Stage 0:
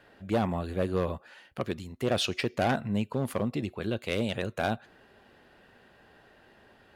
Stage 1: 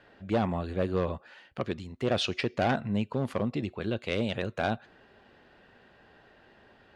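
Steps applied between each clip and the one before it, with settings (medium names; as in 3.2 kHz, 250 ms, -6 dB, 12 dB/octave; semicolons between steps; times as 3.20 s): low-pass 5.6 kHz 12 dB/octave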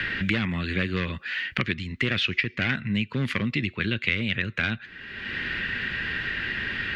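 FFT filter 180 Hz 0 dB, 320 Hz -4 dB, 740 Hz -18 dB, 2 kHz +13 dB, 9 kHz -8 dB; three bands compressed up and down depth 100%; trim +4 dB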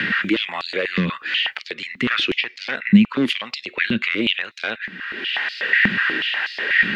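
peak limiter -18 dBFS, peak gain reduction 10 dB; step-sequenced high-pass 8.2 Hz 200–4800 Hz; trim +6 dB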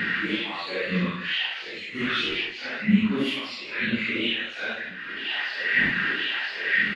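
phase randomisation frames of 200 ms; delay 160 ms -12 dB; trim -5 dB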